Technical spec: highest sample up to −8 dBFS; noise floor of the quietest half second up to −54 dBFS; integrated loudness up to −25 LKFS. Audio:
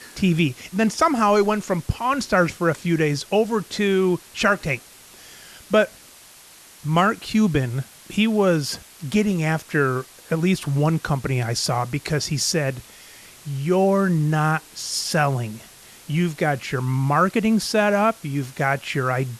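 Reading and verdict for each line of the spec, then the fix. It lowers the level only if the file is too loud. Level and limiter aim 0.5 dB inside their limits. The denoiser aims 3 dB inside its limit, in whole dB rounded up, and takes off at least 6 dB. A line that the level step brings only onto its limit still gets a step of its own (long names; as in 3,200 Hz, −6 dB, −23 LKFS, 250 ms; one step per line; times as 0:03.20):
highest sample −6.0 dBFS: out of spec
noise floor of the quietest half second −47 dBFS: out of spec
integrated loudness −21.5 LKFS: out of spec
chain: broadband denoise 6 dB, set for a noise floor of −47 dBFS
level −4 dB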